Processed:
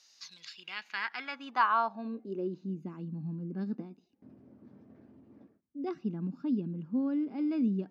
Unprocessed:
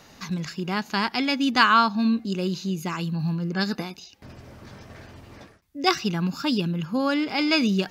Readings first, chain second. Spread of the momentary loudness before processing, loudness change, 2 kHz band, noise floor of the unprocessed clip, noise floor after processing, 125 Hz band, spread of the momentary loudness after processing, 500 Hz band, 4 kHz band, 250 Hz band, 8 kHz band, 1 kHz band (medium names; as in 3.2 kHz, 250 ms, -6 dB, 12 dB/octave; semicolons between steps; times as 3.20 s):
12 LU, -10.0 dB, -12.5 dB, -52 dBFS, -69 dBFS, -11.5 dB, 12 LU, -10.0 dB, -19.5 dB, -9.0 dB, under -15 dB, -9.0 dB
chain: band-pass sweep 5.3 kHz -> 250 Hz, 0.17–2.70 s; bass shelf 87 Hz -8 dB; trim -3 dB